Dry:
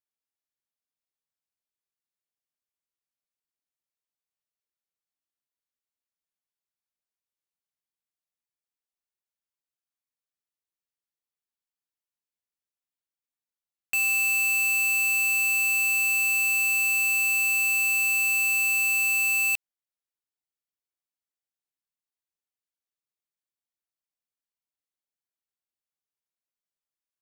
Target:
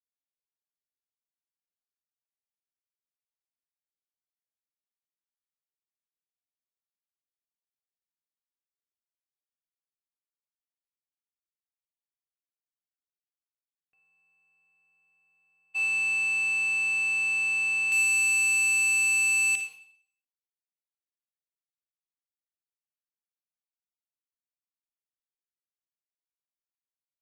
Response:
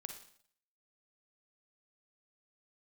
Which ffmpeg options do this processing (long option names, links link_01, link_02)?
-filter_complex "[0:a]asetnsamples=nb_out_samples=441:pad=0,asendcmd='15.74 lowpass f 3800;17.92 lowpass f 8300',lowpass=1600,agate=range=-39dB:threshold=-26dB:ratio=16:detection=peak[link_01];[1:a]atrim=start_sample=2205[link_02];[link_01][link_02]afir=irnorm=-1:irlink=0,volume=6.5dB"